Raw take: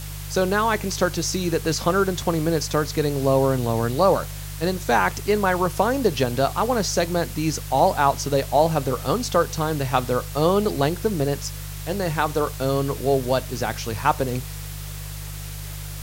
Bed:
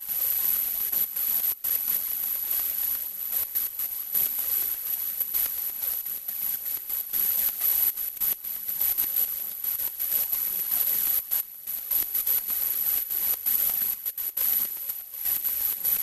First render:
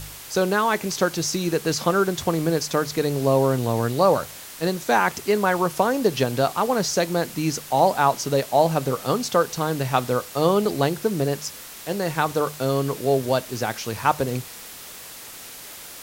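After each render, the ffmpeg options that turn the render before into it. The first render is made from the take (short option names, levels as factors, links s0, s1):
-af "bandreject=f=50:t=h:w=4,bandreject=f=100:t=h:w=4,bandreject=f=150:t=h:w=4"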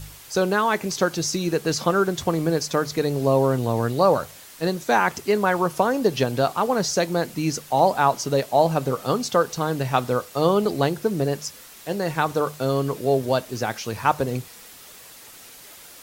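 -af "afftdn=nr=6:nf=-40"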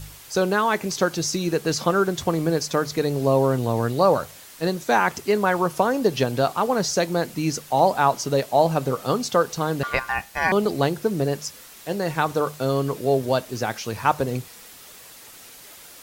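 -filter_complex "[0:a]asettb=1/sr,asplit=3[s0][s1][s2];[s0]atrim=end=9.834[s3];[s1]atrim=start=9.83:end=10.52,asetpts=PTS-STARTPTS,afade=t=in:d=0.004:c=qsin,afade=t=out:st=0.686:d=0.004:c=qsin,aeval=exprs='val(0)*sin(2*PI*1300*n/s)':c=same[s4];[s2]atrim=start=10.516[s5];[s3][s4]acrossfade=d=0.004:c1=hsin:c2=qsin[s6];[s6][s5]acrossfade=d=0.004:c1=qsin:c2=hsin"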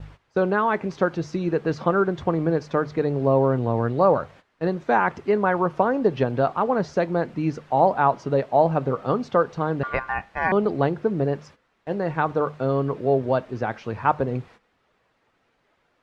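-af "lowpass=1800,agate=range=0.178:threshold=0.00562:ratio=16:detection=peak"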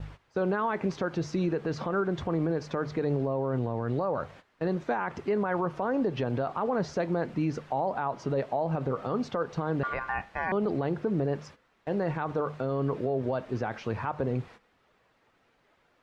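-af "acompressor=threshold=0.1:ratio=6,alimiter=limit=0.1:level=0:latency=1:release=28"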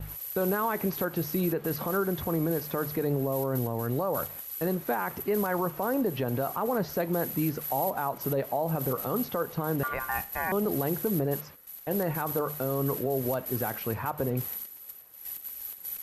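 -filter_complex "[1:a]volume=0.237[s0];[0:a][s0]amix=inputs=2:normalize=0"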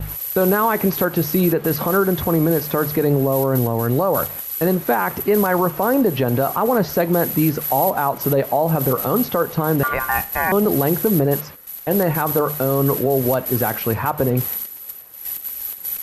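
-af "volume=3.55"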